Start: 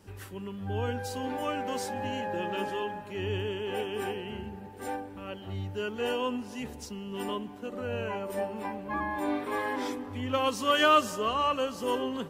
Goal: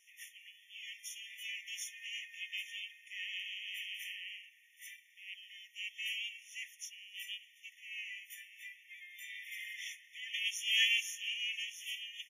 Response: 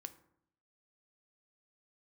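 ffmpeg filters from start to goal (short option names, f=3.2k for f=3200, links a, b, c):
-filter_complex "[0:a]asplit=2[a][b];[b]asetrate=37084,aresample=44100,atempo=1.18921,volume=-5dB[c];[a][c]amix=inputs=2:normalize=0,afftfilt=real='re*eq(mod(floor(b*sr/1024/1800),2),1)':imag='im*eq(mod(floor(b*sr/1024/1800),2),1)':win_size=1024:overlap=0.75"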